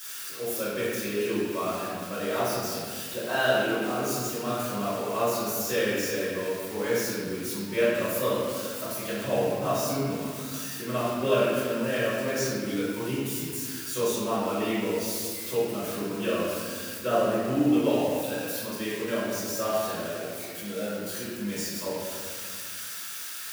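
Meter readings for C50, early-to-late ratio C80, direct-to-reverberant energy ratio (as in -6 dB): -2.5 dB, -0.5 dB, -12.5 dB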